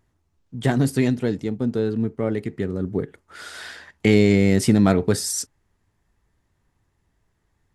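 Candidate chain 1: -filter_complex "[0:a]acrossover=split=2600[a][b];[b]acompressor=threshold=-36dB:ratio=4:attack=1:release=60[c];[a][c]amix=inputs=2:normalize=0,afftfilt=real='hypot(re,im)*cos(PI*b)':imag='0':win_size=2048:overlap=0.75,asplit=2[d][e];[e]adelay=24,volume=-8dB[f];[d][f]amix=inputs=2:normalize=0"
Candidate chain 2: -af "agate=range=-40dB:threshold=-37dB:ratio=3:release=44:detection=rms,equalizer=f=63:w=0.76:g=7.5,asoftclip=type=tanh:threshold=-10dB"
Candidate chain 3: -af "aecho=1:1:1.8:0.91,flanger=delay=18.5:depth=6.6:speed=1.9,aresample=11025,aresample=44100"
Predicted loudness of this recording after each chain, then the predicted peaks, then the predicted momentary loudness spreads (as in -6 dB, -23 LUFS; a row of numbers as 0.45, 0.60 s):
-25.0, -22.0, -23.0 LUFS; -5.5, -10.0, -6.0 dBFS; 18, 19, 19 LU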